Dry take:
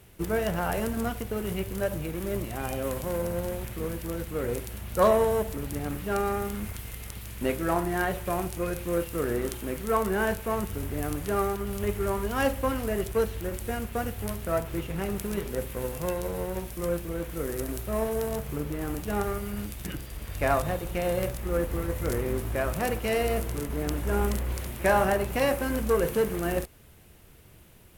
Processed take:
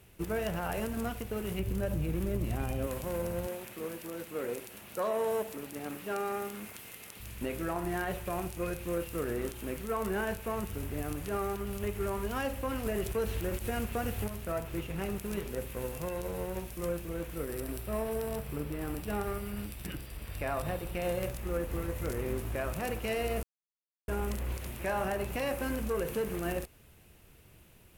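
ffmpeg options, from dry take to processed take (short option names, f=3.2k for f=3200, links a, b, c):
-filter_complex "[0:a]asettb=1/sr,asplit=3[a][b][c];[a]atrim=end=1.594[d];[b]atrim=start=1.59:end=2.87,asetpts=PTS-STARTPTS,afade=t=in:d=0.004:c=qsin,afade=t=out:st=1.276:d=0.004:c=qsin,lowshelf=f=280:g=11[e];[c]atrim=start=2.866[f];[d][e]acrossfade=d=0.004:c1=hsin:c2=qsin[g];[g][f]acrossfade=d=0.004:c1=qsin:c2=hsin,asettb=1/sr,asplit=3[h][i][j];[h]atrim=end=3.474[k];[i]atrim=start=3.47:end=7.2,asetpts=PTS-STARTPTS,afade=t=in:d=0.004:c=qsin,afade=t=out:st=3.726:d=0.004:c=qsin,highpass=240[l];[j]atrim=start=7.196[m];[k][l]acrossfade=d=0.004:c1=hsin:c2=qsin[n];[n][m]acrossfade=d=0.004:c1=qsin:c2=hsin,asettb=1/sr,asplit=3[o][p][q];[o]atrim=end=17.354[r];[p]atrim=start=17.35:end=21.02,asetpts=PTS-STARTPTS,afade=t=in:d=0.004:c=qsin,afade=t=out:st=3.666:d=0.004:c=qsin,bandreject=f=6.6k:w=6[s];[q]atrim=start=21.016[t];[r][s]acrossfade=d=0.004:c1=hsin:c2=qsin[u];[u][t]acrossfade=d=0.004:c1=qsin:c2=hsin,asplit=5[v][w][x][y][z];[v]atrim=end=12.862[aa];[w]atrim=start=12.858:end=14.292,asetpts=PTS-STARTPTS,volume=5.5dB[ab];[x]atrim=start=14.288:end=23.43,asetpts=PTS-STARTPTS,afade=t=out:st=9.138:d=0.004:c=hsin[ac];[y]atrim=start=23.43:end=24.08,asetpts=PTS-STARTPTS,volume=0[ad];[z]atrim=start=24.08,asetpts=PTS-STARTPTS,afade=t=in:d=0.004:c=hsin[ae];[aa][ab]acrossfade=d=0.004:c1=hsin:c2=hsin[af];[ac][ad][ae]concat=n=3:v=0:a=1[ag];[af][ag]acrossfade=d=0.004:c1=hsin:c2=hsin,alimiter=limit=-19dB:level=0:latency=1:release=71,equalizer=f=2.6k:w=6.2:g=4.5,volume=-4.5dB"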